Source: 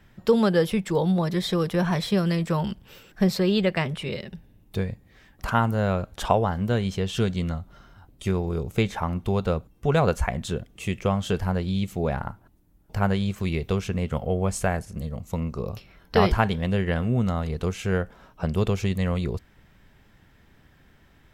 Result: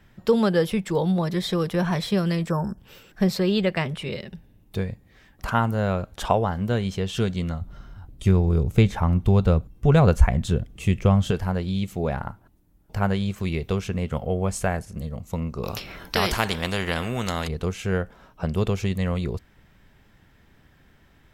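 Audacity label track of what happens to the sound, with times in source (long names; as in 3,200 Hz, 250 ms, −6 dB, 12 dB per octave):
2.500000	2.780000	time-frequency box erased 1,800–5,100 Hz
7.610000	11.310000	low-shelf EQ 180 Hz +12 dB
15.630000	17.480000	every bin compressed towards the loudest bin 2 to 1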